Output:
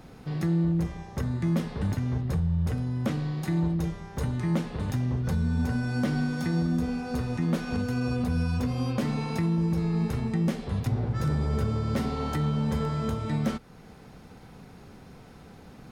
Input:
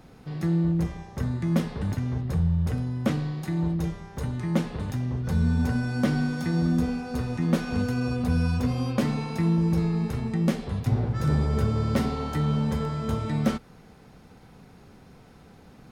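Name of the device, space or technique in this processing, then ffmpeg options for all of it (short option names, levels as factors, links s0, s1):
clipper into limiter: -af "asoftclip=type=hard:threshold=0.188,alimiter=limit=0.0891:level=0:latency=1:release=418,volume=1.33"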